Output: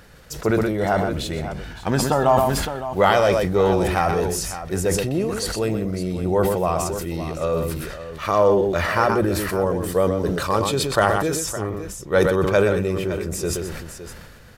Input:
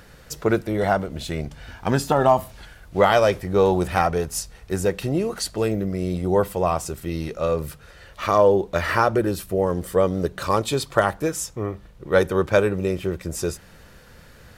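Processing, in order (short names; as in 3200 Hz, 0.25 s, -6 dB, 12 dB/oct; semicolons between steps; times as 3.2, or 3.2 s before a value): tapped delay 0.125/0.562 s -9/-12.5 dB; sustainer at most 33 dB/s; gain -1 dB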